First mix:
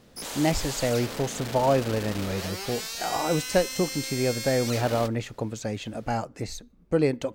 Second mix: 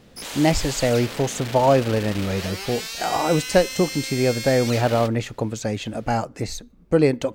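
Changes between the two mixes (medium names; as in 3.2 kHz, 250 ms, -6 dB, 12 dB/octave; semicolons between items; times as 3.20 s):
speech +5.5 dB; background: add peaking EQ 2.6 kHz +5.5 dB 1.6 oct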